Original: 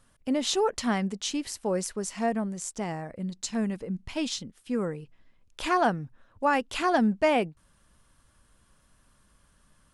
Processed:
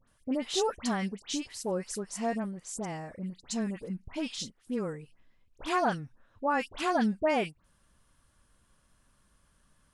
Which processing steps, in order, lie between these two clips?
all-pass dispersion highs, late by 78 ms, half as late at 1,900 Hz
level −4 dB

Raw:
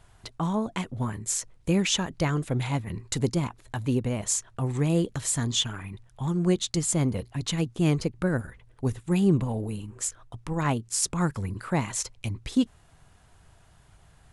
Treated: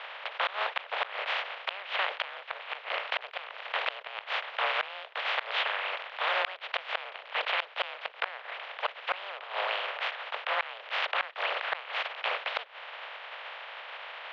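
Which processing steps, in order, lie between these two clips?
compressing power law on the bin magnitudes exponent 0.17
in parallel at −6 dB: soft clipping −18.5 dBFS, distortion −12 dB
on the sum: single-sideband voice off tune +200 Hz 320–3,000 Hz
gate with flip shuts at −17 dBFS, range −29 dB
envelope flattener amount 50%

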